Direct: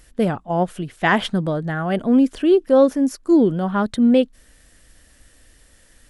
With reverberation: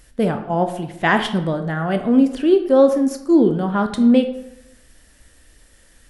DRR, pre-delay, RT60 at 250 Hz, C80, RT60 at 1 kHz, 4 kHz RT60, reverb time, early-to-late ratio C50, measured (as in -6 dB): 6.5 dB, 15 ms, 0.80 s, 12.5 dB, 0.85 s, 0.50 s, 0.85 s, 9.5 dB